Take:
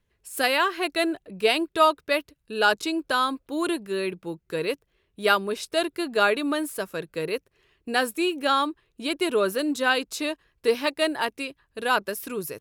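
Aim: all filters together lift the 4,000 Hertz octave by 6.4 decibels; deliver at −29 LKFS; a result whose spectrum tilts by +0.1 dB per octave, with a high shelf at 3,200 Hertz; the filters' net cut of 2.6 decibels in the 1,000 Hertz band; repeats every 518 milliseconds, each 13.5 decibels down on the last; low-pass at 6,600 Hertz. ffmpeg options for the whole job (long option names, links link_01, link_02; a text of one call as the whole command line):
ffmpeg -i in.wav -af "lowpass=6600,equalizer=frequency=1000:width_type=o:gain=-4.5,highshelf=frequency=3200:gain=4,equalizer=frequency=4000:width_type=o:gain=6,aecho=1:1:518|1036:0.211|0.0444,volume=-5dB" out.wav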